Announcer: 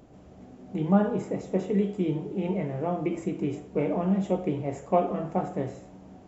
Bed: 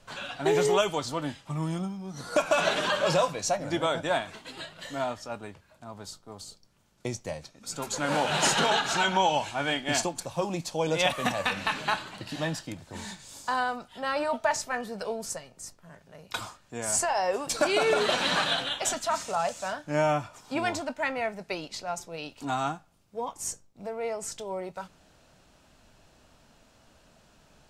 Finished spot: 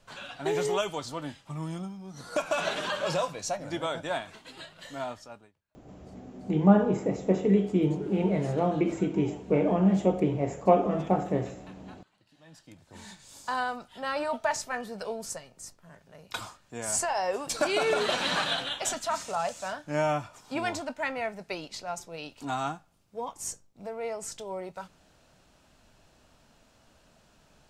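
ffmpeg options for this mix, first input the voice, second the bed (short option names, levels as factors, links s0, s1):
-filter_complex "[0:a]adelay=5750,volume=1.33[s0];[1:a]volume=10.6,afade=t=out:st=5.14:d=0.38:silence=0.0749894,afade=t=in:st=12.44:d=1.16:silence=0.0562341[s1];[s0][s1]amix=inputs=2:normalize=0"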